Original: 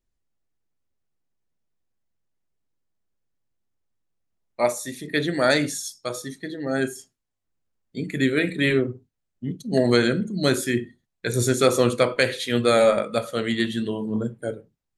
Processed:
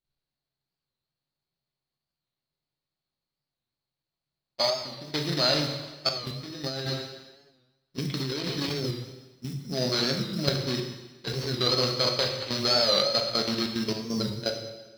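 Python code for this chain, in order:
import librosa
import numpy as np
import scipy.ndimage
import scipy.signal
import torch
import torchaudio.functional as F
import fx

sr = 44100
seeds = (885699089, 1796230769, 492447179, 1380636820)

y = scipy.ndimage.median_filter(x, 25, mode='constant')
y = np.repeat(y[::8], 8)[:len(y)]
y = fx.lowpass_res(y, sr, hz=4300.0, q=11.0)
y = fx.peak_eq(y, sr, hz=140.0, db=14.0, octaves=0.37)
y = fx.notch(y, sr, hz=480.0, q=12.0)
y = fx.level_steps(y, sr, step_db=13)
y = fx.quant_float(y, sr, bits=4)
y = fx.low_shelf(y, sr, hz=370.0, db=-12.0)
y = fx.rev_plate(y, sr, seeds[0], rt60_s=1.2, hf_ratio=0.95, predelay_ms=0, drr_db=3.0)
y = fx.over_compress(y, sr, threshold_db=-35.0, ratio=-1.0, at=(6.67, 8.85))
y = fx.record_warp(y, sr, rpm=45.0, depth_cents=100.0)
y = F.gain(torch.from_numpy(y), 4.5).numpy()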